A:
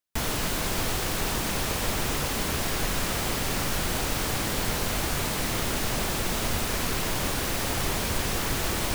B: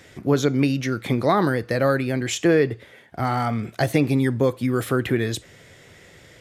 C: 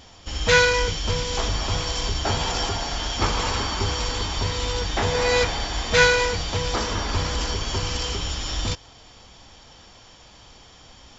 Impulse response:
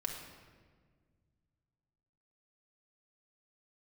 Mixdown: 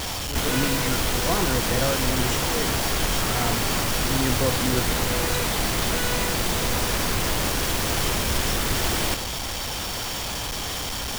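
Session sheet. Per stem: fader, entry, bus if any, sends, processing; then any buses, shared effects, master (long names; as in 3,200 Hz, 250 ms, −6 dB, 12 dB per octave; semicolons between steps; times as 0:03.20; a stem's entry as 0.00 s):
+2.5 dB, 0.20 s, no send, no processing
−7.0 dB, 0.00 s, no send, EQ curve with evenly spaced ripples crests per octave 2, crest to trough 8 dB; volume swells 251 ms
−5.0 dB, 0.00 s, no send, sign of each sample alone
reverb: not used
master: no processing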